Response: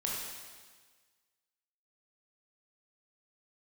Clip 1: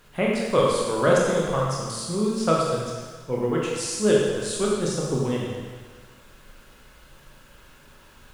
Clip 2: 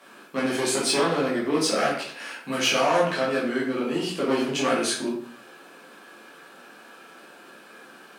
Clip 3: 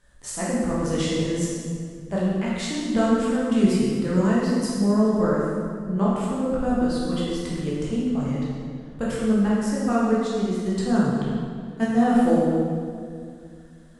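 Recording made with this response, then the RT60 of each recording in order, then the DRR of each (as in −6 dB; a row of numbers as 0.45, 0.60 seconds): 1; 1.5, 0.60, 2.3 seconds; −4.0, −6.5, −7.5 decibels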